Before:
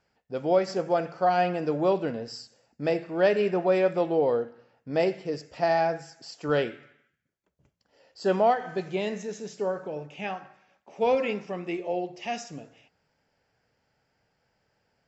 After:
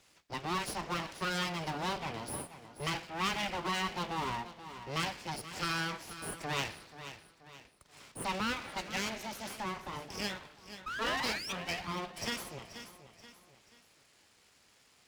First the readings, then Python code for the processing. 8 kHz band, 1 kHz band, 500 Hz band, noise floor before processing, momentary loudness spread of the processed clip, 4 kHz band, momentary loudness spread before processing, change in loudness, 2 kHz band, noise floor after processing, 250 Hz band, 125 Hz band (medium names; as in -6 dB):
no reading, -7.5 dB, -18.5 dB, -76 dBFS, 15 LU, +4.5 dB, 13 LU, -9.5 dB, -1.0 dB, -66 dBFS, -9.5 dB, -5.0 dB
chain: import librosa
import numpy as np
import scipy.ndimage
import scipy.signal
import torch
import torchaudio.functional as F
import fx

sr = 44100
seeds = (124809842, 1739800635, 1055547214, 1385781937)

p1 = np.clip(x, -10.0 ** (-26.5 / 20.0), 10.0 ** (-26.5 / 20.0))
p2 = x + F.gain(torch.from_numpy(p1), -7.0).numpy()
p3 = fx.band_shelf(p2, sr, hz=3300.0, db=10.5, octaves=1.7)
p4 = fx.spec_paint(p3, sr, seeds[0], shape='rise', start_s=10.86, length_s=0.67, low_hz=610.0, high_hz=3100.0, level_db=-27.0)
p5 = np.abs(p4)
p6 = scipy.signal.sosfilt(scipy.signal.butter(2, 43.0, 'highpass', fs=sr, output='sos'), p5)
p7 = p6 + fx.echo_feedback(p6, sr, ms=481, feedback_pct=27, wet_db=-16.5, dry=0)
p8 = fx.band_squash(p7, sr, depth_pct=40)
y = F.gain(torch.from_numpy(p8), -7.5).numpy()